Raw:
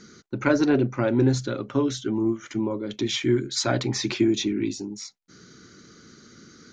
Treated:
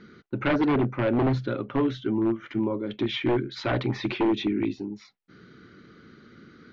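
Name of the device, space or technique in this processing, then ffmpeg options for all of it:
synthesiser wavefolder: -af "aeval=exprs='0.141*(abs(mod(val(0)/0.141+3,4)-2)-1)':channel_layout=same,lowpass=frequency=3300:width=0.5412,lowpass=frequency=3300:width=1.3066"

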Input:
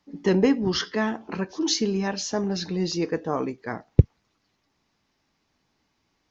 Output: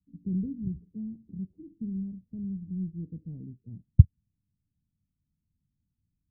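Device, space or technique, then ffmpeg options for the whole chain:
the neighbour's flat through the wall: -af "lowpass=frequency=180:width=0.5412,lowpass=frequency=180:width=1.3066,equalizer=frequency=85:width_type=o:width=0.77:gain=3.5,volume=-1.5dB"

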